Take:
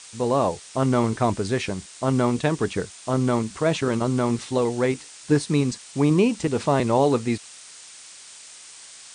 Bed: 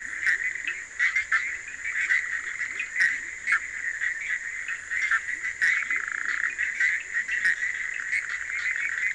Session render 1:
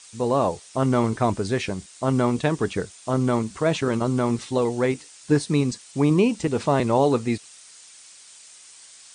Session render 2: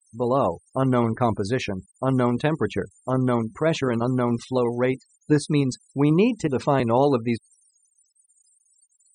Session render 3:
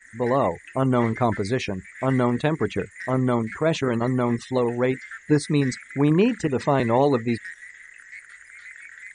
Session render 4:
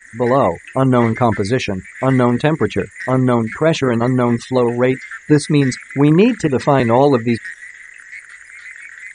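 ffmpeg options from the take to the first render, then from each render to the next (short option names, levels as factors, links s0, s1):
-af "afftdn=nr=6:nf=-45"
-af "afftfilt=real='re*gte(hypot(re,im),0.0141)':imag='im*gte(hypot(re,im),0.0141)':win_size=1024:overlap=0.75"
-filter_complex "[1:a]volume=0.188[s0];[0:a][s0]amix=inputs=2:normalize=0"
-af "volume=2.37,alimiter=limit=0.891:level=0:latency=1"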